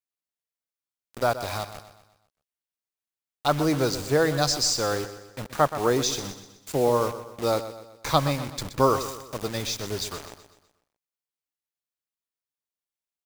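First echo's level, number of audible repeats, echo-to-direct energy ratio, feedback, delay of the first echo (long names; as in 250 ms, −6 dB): −12.5 dB, 4, −11.5 dB, 46%, 125 ms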